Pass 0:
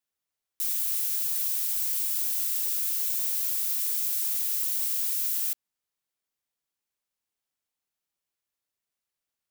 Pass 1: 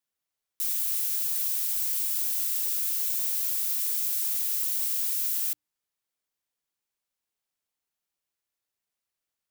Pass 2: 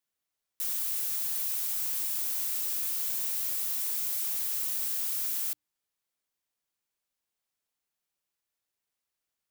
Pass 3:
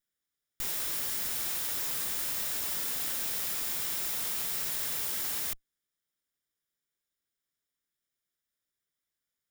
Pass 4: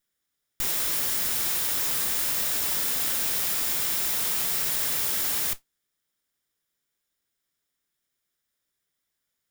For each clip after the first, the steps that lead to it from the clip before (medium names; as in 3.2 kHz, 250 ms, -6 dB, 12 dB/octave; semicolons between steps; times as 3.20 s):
hum notches 60/120/180/240/300 Hz
saturation -26.5 dBFS, distortion -13 dB
comb filter that takes the minimum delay 0.56 ms
modulation noise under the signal 15 dB; trim +6.5 dB